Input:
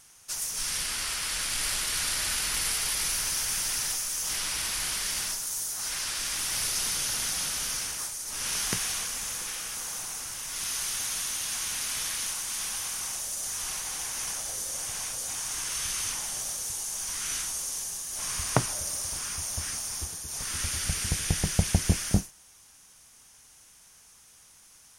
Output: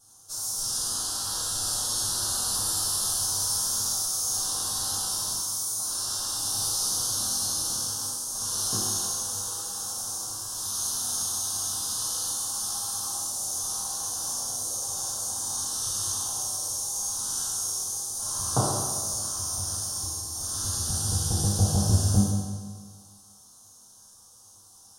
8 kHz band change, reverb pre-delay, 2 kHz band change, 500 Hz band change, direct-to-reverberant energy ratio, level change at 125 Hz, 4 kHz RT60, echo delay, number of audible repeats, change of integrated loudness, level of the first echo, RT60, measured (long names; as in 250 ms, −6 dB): +3.0 dB, 4 ms, −13.0 dB, +2.0 dB, −11.5 dB, +5.0 dB, 1.5 s, no echo audible, no echo audible, +2.5 dB, no echo audible, 1.6 s